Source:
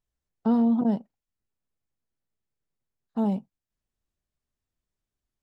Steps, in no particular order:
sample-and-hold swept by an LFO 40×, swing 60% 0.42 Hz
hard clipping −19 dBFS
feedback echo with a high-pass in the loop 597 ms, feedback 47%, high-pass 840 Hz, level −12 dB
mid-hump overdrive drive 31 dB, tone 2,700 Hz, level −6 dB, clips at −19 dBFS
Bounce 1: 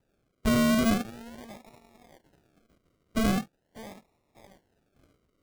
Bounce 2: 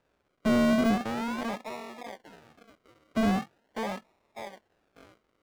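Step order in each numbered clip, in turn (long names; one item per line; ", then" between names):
hard clipping, then mid-hump overdrive, then feedback echo with a high-pass in the loop, then sample-and-hold swept by an LFO
hard clipping, then feedback echo with a high-pass in the loop, then sample-and-hold swept by an LFO, then mid-hump overdrive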